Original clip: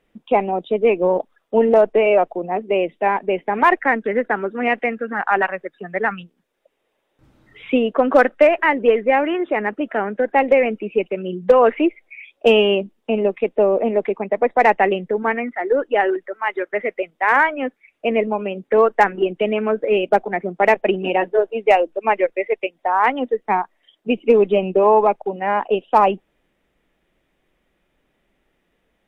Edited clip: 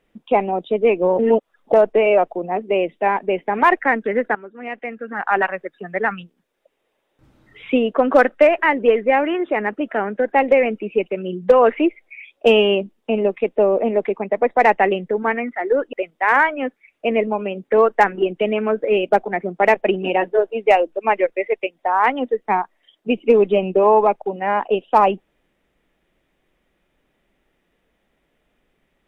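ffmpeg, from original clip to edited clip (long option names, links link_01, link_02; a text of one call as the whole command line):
ffmpeg -i in.wav -filter_complex "[0:a]asplit=5[link_01][link_02][link_03][link_04][link_05];[link_01]atrim=end=1.192[link_06];[link_02]atrim=start=1.188:end=1.732,asetpts=PTS-STARTPTS,areverse[link_07];[link_03]atrim=start=1.728:end=4.35,asetpts=PTS-STARTPTS,afade=type=out:start_time=2.618:duration=0.004:curve=hsin:silence=0.199526[link_08];[link_04]atrim=start=4.35:end=15.932,asetpts=PTS-STARTPTS,afade=type=in:duration=1.02:curve=qua:silence=0.199526[link_09];[link_05]atrim=start=16.928[link_10];[link_06][link_07]acrossfade=duration=0.004:curve1=hsin:curve2=hsin[link_11];[link_08][link_09]concat=n=2:v=0:a=1[link_12];[link_11][link_12]acrossfade=duration=0.004:curve1=hsin:curve2=hsin[link_13];[link_13][link_10]acrossfade=duration=0.004:curve1=hsin:curve2=hsin" out.wav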